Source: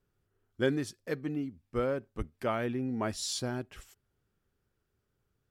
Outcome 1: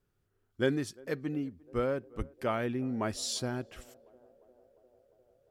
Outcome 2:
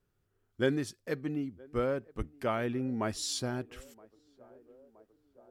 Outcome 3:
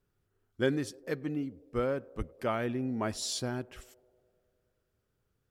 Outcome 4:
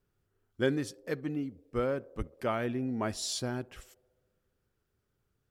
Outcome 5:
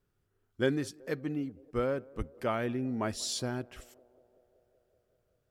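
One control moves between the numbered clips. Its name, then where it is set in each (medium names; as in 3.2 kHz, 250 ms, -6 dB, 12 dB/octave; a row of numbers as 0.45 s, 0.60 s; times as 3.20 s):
band-passed feedback delay, time: 351 ms, 971 ms, 101 ms, 66 ms, 189 ms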